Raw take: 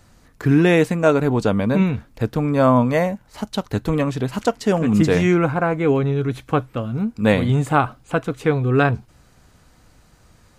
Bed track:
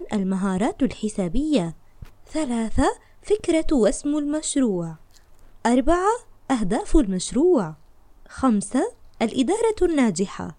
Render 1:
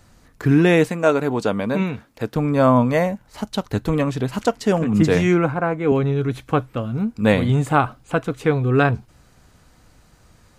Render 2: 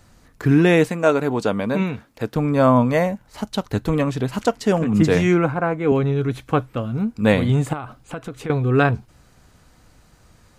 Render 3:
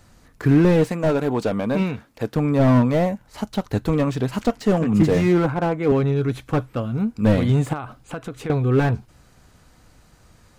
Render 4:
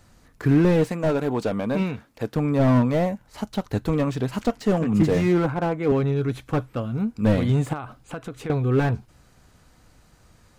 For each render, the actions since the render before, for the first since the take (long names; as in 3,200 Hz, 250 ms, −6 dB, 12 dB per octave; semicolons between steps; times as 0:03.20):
0:00.89–0:02.36: high-pass filter 270 Hz 6 dB per octave; 0:04.84–0:05.92: multiband upward and downward expander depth 70%
0:07.73–0:08.50: downward compressor, threshold −26 dBFS
slew-rate limiting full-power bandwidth 94 Hz
level −2.5 dB